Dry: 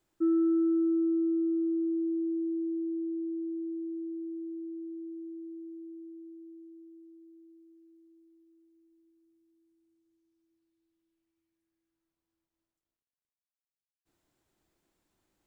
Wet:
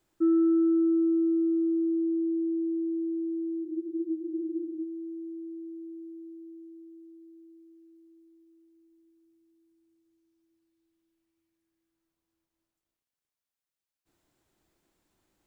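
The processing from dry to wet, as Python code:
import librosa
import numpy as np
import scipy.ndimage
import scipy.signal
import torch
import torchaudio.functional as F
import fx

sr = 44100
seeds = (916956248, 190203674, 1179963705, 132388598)

y = fx.spec_freeze(x, sr, seeds[0], at_s=3.66, hold_s=1.15)
y = y * librosa.db_to_amplitude(3.0)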